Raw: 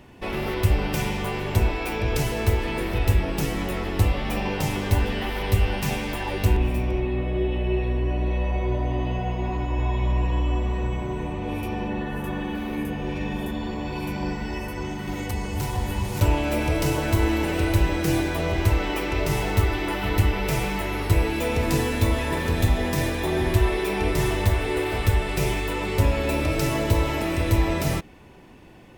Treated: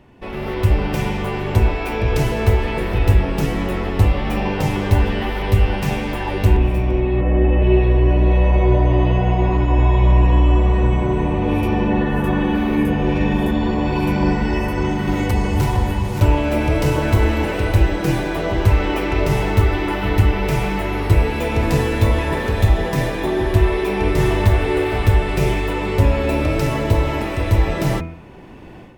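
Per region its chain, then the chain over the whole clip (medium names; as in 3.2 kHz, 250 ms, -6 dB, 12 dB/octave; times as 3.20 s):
7.21–7.62 s: inverse Chebyshev low-pass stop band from 6.4 kHz, stop band 50 dB + comb 3.8 ms, depth 56%
whole clip: level rider; treble shelf 3.4 kHz -10 dB; de-hum 82.22 Hz, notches 31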